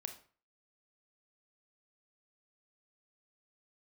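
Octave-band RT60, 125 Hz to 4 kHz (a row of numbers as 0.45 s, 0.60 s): 0.45 s, 0.40 s, 0.40 s, 0.40 s, 0.40 s, 0.30 s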